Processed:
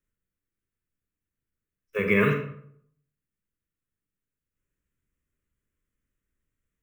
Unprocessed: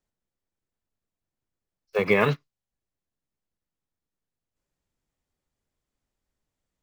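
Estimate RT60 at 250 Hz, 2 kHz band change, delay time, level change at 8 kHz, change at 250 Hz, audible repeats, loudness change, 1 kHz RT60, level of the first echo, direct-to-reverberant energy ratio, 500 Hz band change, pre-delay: 0.70 s, +0.5 dB, no echo audible, can't be measured, +2.5 dB, no echo audible, −1.0 dB, 0.60 s, no echo audible, 3.5 dB, −2.0 dB, 31 ms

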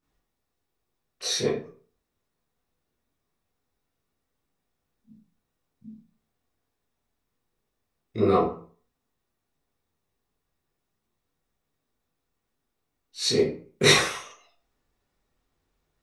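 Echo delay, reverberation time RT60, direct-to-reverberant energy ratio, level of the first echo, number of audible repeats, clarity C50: no echo audible, 0.45 s, −10.5 dB, no echo audible, no echo audible, 3.5 dB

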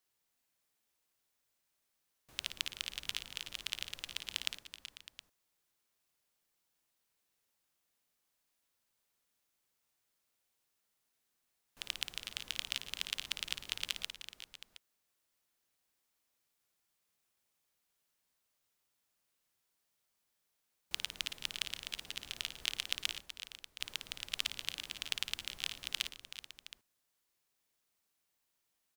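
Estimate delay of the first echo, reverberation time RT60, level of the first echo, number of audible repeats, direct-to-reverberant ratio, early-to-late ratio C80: 55 ms, no reverb audible, −9.0 dB, 5, no reverb audible, no reverb audible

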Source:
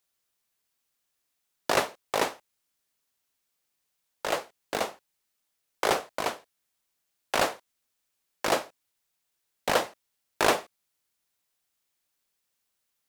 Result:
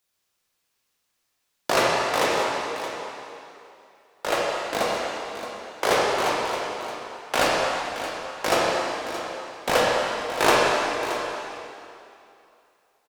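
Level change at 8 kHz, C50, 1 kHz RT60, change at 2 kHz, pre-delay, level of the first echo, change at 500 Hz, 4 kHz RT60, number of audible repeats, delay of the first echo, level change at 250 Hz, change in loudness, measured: +5.0 dB, −2.5 dB, 2.9 s, +7.5 dB, 13 ms, −12.0 dB, +7.5 dB, 2.6 s, 1, 623 ms, +7.0 dB, +5.0 dB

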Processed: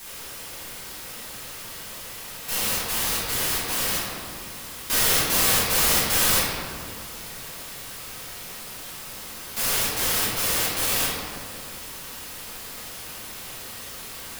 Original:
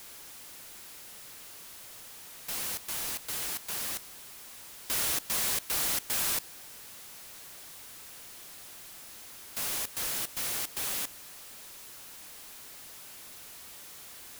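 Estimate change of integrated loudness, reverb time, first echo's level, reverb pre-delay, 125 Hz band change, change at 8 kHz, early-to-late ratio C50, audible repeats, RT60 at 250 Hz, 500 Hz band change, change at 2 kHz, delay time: +8.5 dB, 2.0 s, no echo audible, 4 ms, +16.0 dB, +9.0 dB, −1.5 dB, no echo audible, 2.8 s, +14.5 dB, +12.0 dB, no echo audible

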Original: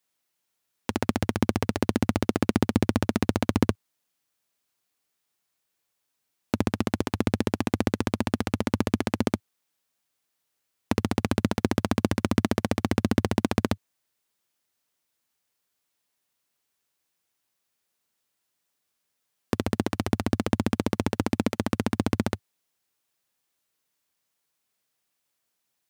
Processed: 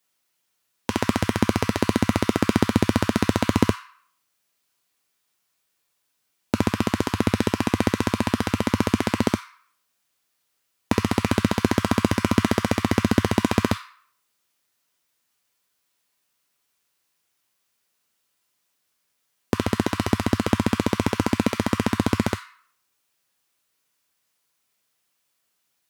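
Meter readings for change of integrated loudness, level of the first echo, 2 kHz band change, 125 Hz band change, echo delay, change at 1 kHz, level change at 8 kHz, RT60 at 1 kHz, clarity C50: +4.0 dB, no echo audible, +6.0 dB, +3.5 dB, no echo audible, +5.0 dB, +5.0 dB, 0.65 s, 8.0 dB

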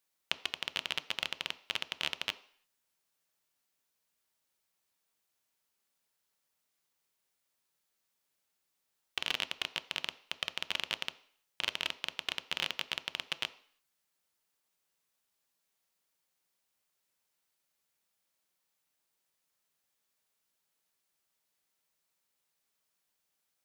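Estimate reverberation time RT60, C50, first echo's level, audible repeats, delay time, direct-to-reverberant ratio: 0.55 s, 17.5 dB, no echo audible, no echo audible, no echo audible, 11.0 dB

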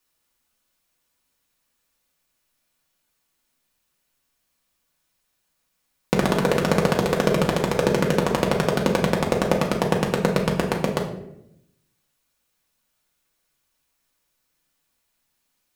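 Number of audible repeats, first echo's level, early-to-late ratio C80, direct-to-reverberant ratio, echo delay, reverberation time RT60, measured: no echo audible, no echo audible, 10.5 dB, −2.0 dB, no echo audible, 0.80 s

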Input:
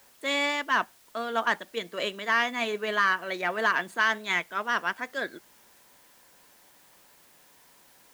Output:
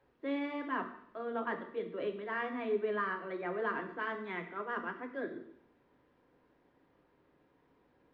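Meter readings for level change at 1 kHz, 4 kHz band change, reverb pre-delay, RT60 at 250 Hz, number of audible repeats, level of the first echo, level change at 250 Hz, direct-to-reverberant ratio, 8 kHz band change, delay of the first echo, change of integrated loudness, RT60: −10.5 dB, −21.5 dB, 3 ms, 0.70 s, no echo audible, no echo audible, −1.5 dB, 1.0 dB, below −35 dB, no echo audible, −10.0 dB, 0.70 s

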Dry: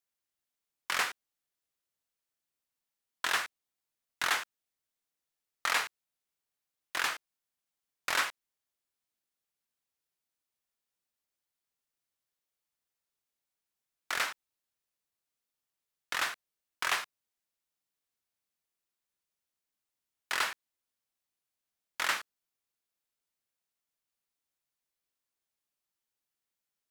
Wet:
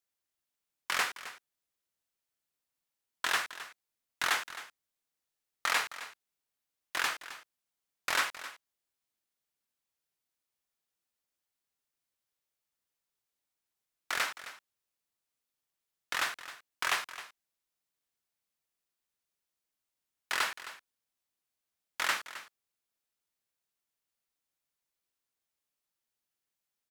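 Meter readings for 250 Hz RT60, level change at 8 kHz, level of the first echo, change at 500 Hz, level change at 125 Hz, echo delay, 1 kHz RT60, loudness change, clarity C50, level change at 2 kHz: no reverb audible, 0.0 dB, −14.5 dB, 0.0 dB, can't be measured, 264 ms, no reverb audible, 0.0 dB, no reverb audible, 0.0 dB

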